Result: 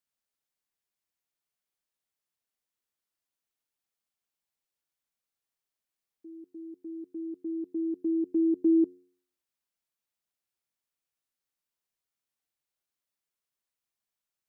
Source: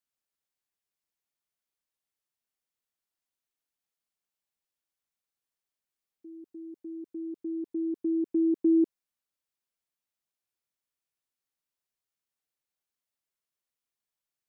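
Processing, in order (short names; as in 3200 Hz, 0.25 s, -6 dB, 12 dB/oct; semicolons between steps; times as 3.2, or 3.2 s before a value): de-hum 89.91 Hz, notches 5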